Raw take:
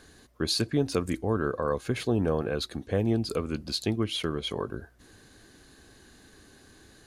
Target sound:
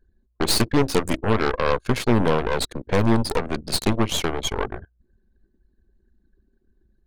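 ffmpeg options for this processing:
-af "aeval=exprs='0.224*(cos(1*acos(clip(val(0)/0.224,-1,1)))-cos(1*PI/2))+0.0501*(cos(8*acos(clip(val(0)/0.224,-1,1)))-cos(8*PI/2))':c=same,anlmdn=0.158,volume=5dB"

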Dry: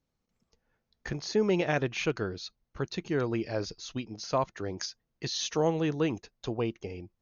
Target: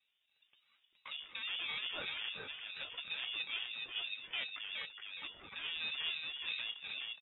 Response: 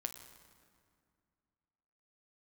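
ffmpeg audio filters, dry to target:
-filter_complex "[0:a]lowshelf=f=220:g=-6.5,bandreject=f=50:t=h:w=6,bandreject=f=100:t=h:w=6,bandreject=f=150:t=h:w=6,bandreject=f=200:t=h:w=6,bandreject=f=250:t=h:w=6,bandreject=f=300:t=h:w=6,bandreject=f=350:t=h:w=6,bandreject=f=400:t=h:w=6,asplit=2[a][b];[b]acompressor=threshold=-42dB:ratio=6,volume=2.5dB[c];[a][c]amix=inputs=2:normalize=0,highshelf=f=2.2k:g=-11.5,asoftclip=type=hard:threshold=-32dB,alimiter=level_in=13dB:limit=-24dB:level=0:latency=1:release=360,volume=-13dB,lowpass=f=2.9k:t=q:w=0.5098,lowpass=f=2.9k:t=q:w=0.6013,lowpass=f=2.9k:t=q:w=0.9,lowpass=f=2.9k:t=q:w=2.563,afreqshift=-3400,aecho=1:1:2.9:0.66,aecho=1:1:418|836|1254|1672|2090:0.668|0.274|0.112|0.0461|0.0189,aeval=exprs='val(0)*sin(2*PI*400*n/s+400*0.4/2.9*sin(2*PI*2.9*n/s))':c=same"

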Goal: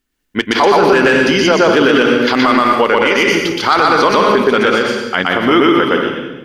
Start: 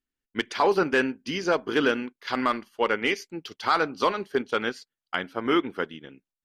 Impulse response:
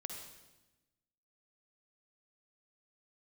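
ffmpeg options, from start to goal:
-filter_complex "[0:a]asplit=2[a][b];[1:a]atrim=start_sample=2205,adelay=121[c];[b][c]afir=irnorm=-1:irlink=0,volume=3dB[d];[a][d]amix=inputs=2:normalize=0,alimiter=level_in=17dB:limit=-1dB:release=50:level=0:latency=1,volume=-1dB"

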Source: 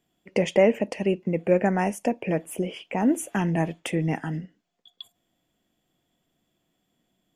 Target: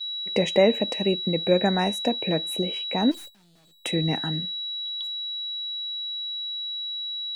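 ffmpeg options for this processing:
-filter_complex "[0:a]aeval=exprs='val(0)+0.0355*sin(2*PI*3900*n/s)':c=same,asplit=3[a][b][c];[a]afade=t=out:st=3.1:d=0.02[d];[b]aeval=exprs='(tanh(112*val(0)+0.55)-tanh(0.55))/112':c=same,afade=t=in:st=3.1:d=0.02,afade=t=out:st=3.84:d=0.02[e];[c]afade=t=in:st=3.84:d=0.02[f];[d][e][f]amix=inputs=3:normalize=0,agate=range=-17dB:threshold=-37dB:ratio=16:detection=peak"

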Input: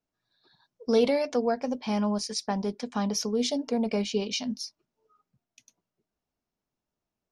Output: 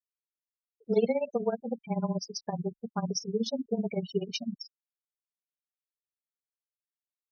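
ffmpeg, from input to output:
-af "afftfilt=real='re*gte(hypot(re,im),0.0562)':imag='im*gte(hypot(re,im),0.0562)':win_size=1024:overlap=0.75,afreqshift=-21,tremolo=f=16:d=0.85"

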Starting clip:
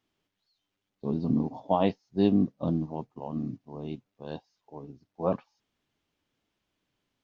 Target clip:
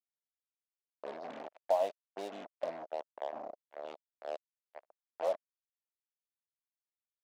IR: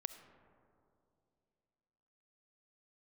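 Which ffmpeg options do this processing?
-af "acrusher=bits=4:mix=0:aa=0.5,acompressor=threshold=-35dB:ratio=2,highpass=f=620:t=q:w=4.9,equalizer=f=1.3k:t=o:w=0.77:g=-2.5,volume=-6dB"

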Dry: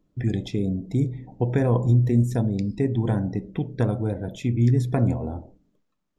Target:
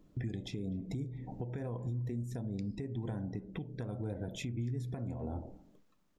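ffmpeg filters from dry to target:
-filter_complex "[0:a]acompressor=threshold=-36dB:ratio=4,asplit=2[a][b];[b]adelay=250,highpass=300,lowpass=3.4k,asoftclip=type=hard:threshold=-34dB,volume=-25dB[c];[a][c]amix=inputs=2:normalize=0,alimiter=level_in=10.5dB:limit=-24dB:level=0:latency=1:release=464,volume=-10.5dB,volume=5dB"

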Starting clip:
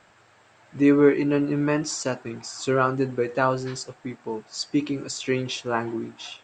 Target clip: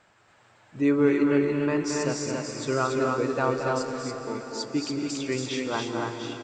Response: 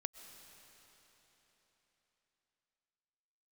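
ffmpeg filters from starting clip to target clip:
-filter_complex "[0:a]aecho=1:1:224.5|282.8:0.447|0.708[a];[1:a]atrim=start_sample=2205,asetrate=34398,aresample=44100[b];[a][b]afir=irnorm=-1:irlink=0,volume=-3dB"

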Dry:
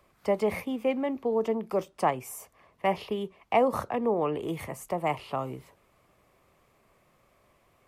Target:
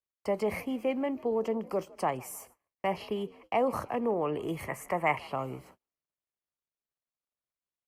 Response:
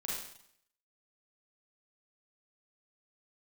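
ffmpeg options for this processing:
-filter_complex "[0:a]asplit=2[a][b];[b]alimiter=limit=-22dB:level=0:latency=1:release=55,volume=0dB[c];[a][c]amix=inputs=2:normalize=0,asettb=1/sr,asplit=3[d][e][f];[d]atrim=end=4.684[g];[e]atrim=start=4.68:end=5.19,asetpts=PTS-STARTPTS,afade=t=in:d=0.004:c=qsin,afade=t=out:st=0.506:d=0.004:c=qsin,equalizer=f=1k:t=o:w=1:g=4,equalizer=f=2k:t=o:w=1:g=12,equalizer=f=4k:t=o:w=1:g=-6[h];[f]atrim=start=5.186[i];[g][h]acrossfade=d=0.004:c1=hsin:c2=qsin[j];[j][i]acrossfade=d=0.004:c1=qsin:c2=hsin,asplit=4[k][l][m][n];[l]adelay=158,afreqshift=56,volume=-23dB[o];[m]adelay=316,afreqshift=112,volume=-29.4dB[p];[n]adelay=474,afreqshift=168,volume=-35.8dB[q];[k][o][p][q]amix=inputs=4:normalize=0,agate=range=-35dB:threshold=-47dB:ratio=16:detection=peak,asuperstop=centerf=3600:order=8:qfactor=7.5,volume=-7.5dB" -ar 48000 -c:a libopus -b:a 64k

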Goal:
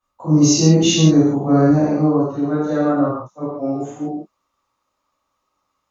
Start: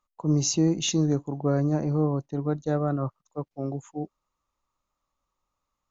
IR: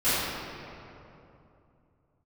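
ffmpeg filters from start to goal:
-filter_complex "[0:a]asetnsamples=n=441:p=0,asendcmd='1.7 highpass f 260',highpass=f=61:p=1[a];[1:a]atrim=start_sample=2205,afade=t=out:st=0.27:d=0.01,atrim=end_sample=12348,asetrate=48510,aresample=44100[b];[a][b]afir=irnorm=-1:irlink=0,volume=-2.5dB"

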